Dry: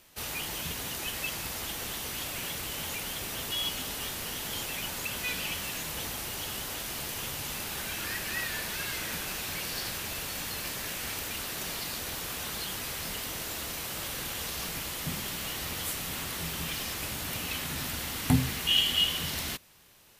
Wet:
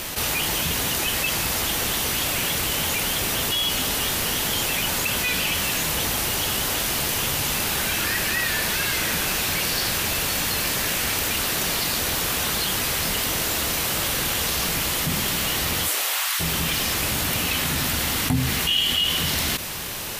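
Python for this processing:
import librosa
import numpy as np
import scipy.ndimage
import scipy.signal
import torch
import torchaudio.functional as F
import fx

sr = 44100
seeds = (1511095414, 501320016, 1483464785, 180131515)

y = fx.highpass(x, sr, hz=fx.line((15.87, 310.0), (16.39, 1100.0)), slope=24, at=(15.87, 16.39), fade=0.02)
y = fx.env_flatten(y, sr, amount_pct=70)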